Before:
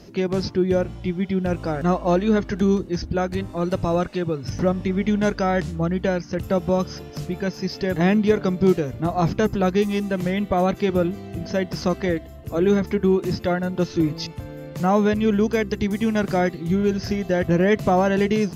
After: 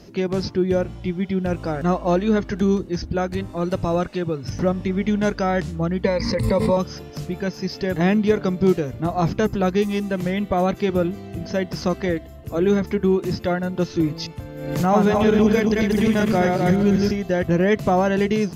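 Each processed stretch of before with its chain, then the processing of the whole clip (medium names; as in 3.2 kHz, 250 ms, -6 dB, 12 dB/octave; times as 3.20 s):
6.04–6.77 s: rippled EQ curve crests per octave 0.95, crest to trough 16 dB + swell ahead of each attack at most 37 dB/s
14.55–17.11 s: backward echo that repeats 127 ms, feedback 55%, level -2 dB + swell ahead of each attack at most 56 dB/s
whole clip: none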